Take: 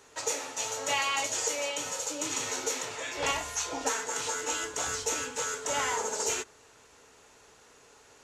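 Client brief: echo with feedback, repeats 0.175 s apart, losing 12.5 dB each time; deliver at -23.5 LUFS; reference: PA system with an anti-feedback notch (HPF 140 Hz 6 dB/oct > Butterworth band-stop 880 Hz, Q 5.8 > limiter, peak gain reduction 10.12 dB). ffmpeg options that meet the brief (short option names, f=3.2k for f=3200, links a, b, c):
-af "highpass=f=140:p=1,asuperstop=centerf=880:order=8:qfactor=5.8,aecho=1:1:175|350|525:0.237|0.0569|0.0137,volume=11.5dB,alimiter=limit=-15.5dB:level=0:latency=1"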